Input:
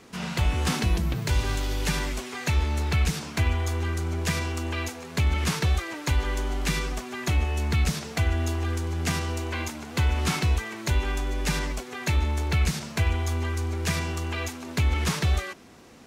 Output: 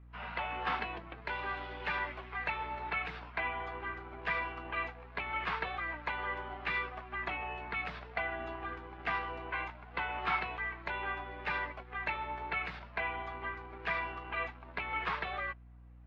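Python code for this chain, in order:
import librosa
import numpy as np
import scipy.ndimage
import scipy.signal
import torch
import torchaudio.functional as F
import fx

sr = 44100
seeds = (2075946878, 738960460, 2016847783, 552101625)

p1 = scipy.signal.sosfilt(scipy.signal.butter(2, 710.0, 'highpass', fs=sr, output='sos'), x)
p2 = fx.add_hum(p1, sr, base_hz=60, snr_db=14)
p3 = fx.quant_dither(p2, sr, seeds[0], bits=6, dither='none')
p4 = p2 + F.gain(torch.from_numpy(p3), -7.0).numpy()
p5 = fx.air_absorb(p4, sr, metres=390.0)
p6 = fx.spectral_expand(p5, sr, expansion=1.5)
y = F.gain(torch.from_numpy(p6), -3.0).numpy()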